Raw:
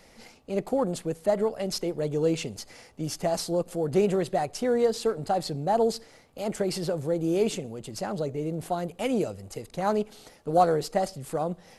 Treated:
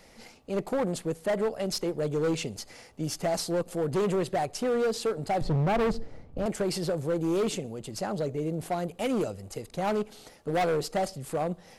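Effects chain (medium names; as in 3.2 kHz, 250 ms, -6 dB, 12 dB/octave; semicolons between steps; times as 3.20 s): 5.41–6.46 s: tilt EQ -4.5 dB/octave; hard clipper -23 dBFS, distortion -8 dB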